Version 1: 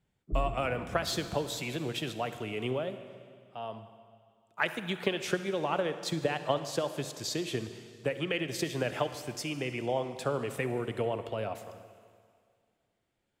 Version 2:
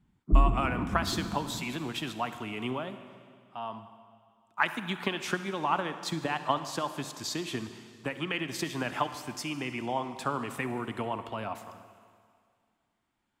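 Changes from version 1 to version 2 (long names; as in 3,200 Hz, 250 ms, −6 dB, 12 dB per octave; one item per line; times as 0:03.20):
background +11.0 dB
master: add graphic EQ with 10 bands 125 Hz −4 dB, 250 Hz +6 dB, 500 Hz −11 dB, 1,000 Hz +10 dB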